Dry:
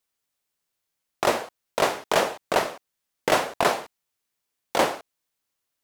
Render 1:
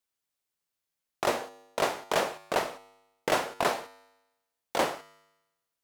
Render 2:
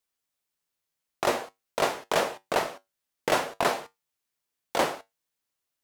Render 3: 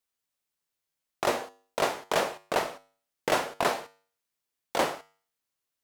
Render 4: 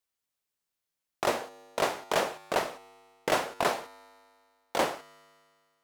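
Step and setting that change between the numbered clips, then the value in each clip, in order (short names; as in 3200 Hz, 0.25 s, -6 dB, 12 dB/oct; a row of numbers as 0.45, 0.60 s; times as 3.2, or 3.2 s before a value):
resonator, decay: 1, 0.18, 0.45, 2.1 s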